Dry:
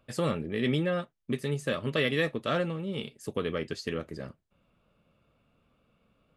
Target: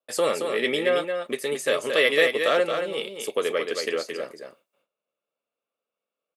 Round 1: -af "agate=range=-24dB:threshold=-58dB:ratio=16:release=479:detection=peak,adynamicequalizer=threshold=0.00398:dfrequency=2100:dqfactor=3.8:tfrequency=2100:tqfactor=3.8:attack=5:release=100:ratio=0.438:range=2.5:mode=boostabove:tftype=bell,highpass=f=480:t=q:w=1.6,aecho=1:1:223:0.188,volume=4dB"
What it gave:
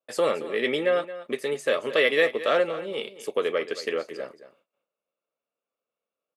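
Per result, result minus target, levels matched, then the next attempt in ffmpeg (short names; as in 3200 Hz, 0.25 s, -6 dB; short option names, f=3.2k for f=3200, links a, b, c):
8000 Hz band -7.0 dB; echo-to-direct -8.5 dB
-af "agate=range=-24dB:threshold=-58dB:ratio=16:release=479:detection=peak,adynamicequalizer=threshold=0.00398:dfrequency=2100:dqfactor=3.8:tfrequency=2100:tqfactor=3.8:attack=5:release=100:ratio=0.438:range=2.5:mode=boostabove:tftype=bell,highpass=f=480:t=q:w=1.6,highshelf=f=5.2k:g=11,aecho=1:1:223:0.188,volume=4dB"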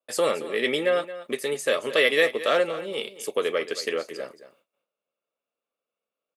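echo-to-direct -8.5 dB
-af "agate=range=-24dB:threshold=-58dB:ratio=16:release=479:detection=peak,adynamicequalizer=threshold=0.00398:dfrequency=2100:dqfactor=3.8:tfrequency=2100:tqfactor=3.8:attack=5:release=100:ratio=0.438:range=2.5:mode=boostabove:tftype=bell,highpass=f=480:t=q:w=1.6,highshelf=f=5.2k:g=11,aecho=1:1:223:0.501,volume=4dB"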